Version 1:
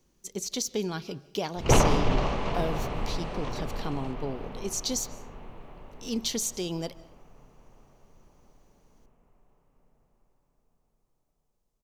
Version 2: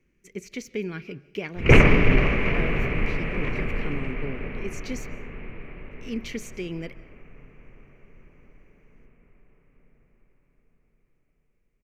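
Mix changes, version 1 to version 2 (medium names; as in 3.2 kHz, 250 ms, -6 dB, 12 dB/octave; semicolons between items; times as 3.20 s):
background +7.0 dB; master: add FFT filter 430 Hz 0 dB, 850 Hz -13 dB, 2.3 kHz +11 dB, 3.6 kHz -14 dB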